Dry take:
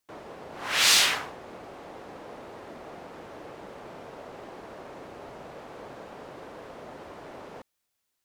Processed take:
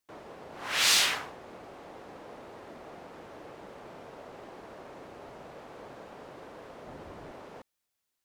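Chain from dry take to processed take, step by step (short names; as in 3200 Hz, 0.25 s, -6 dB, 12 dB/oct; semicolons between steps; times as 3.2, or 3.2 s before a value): 6.87–7.32 low shelf 190 Hz +10.5 dB; gain -3.5 dB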